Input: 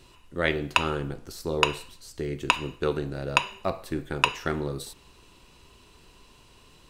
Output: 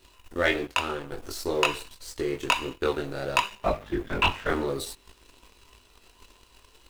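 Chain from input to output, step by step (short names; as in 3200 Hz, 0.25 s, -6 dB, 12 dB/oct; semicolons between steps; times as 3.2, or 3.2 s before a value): bell 150 Hz -12.5 dB 1 oct; in parallel at +1 dB: compressor, threshold -42 dBFS, peak gain reduction 24.5 dB; 3.62–4.5 on the sum: LPC vocoder at 8 kHz whisper; requantised 10-bit, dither none; 0.65–1.12 resonator 58 Hz, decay 0.27 s, harmonics odd, mix 50%; chorus voices 2, 0.55 Hz, delay 21 ms, depth 1.7 ms; sample leveller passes 2; gain -3 dB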